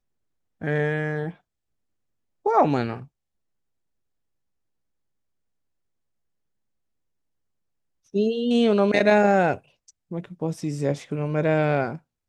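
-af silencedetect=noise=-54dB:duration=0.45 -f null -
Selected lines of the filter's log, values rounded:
silence_start: 0.00
silence_end: 0.61 | silence_duration: 0.61
silence_start: 1.40
silence_end: 2.45 | silence_duration: 1.05
silence_start: 3.08
silence_end: 8.06 | silence_duration: 4.98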